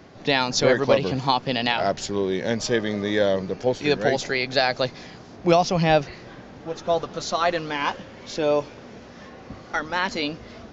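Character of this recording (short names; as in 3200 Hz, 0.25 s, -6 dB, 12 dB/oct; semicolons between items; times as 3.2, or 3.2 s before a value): noise floor -44 dBFS; spectral tilt -4.5 dB/oct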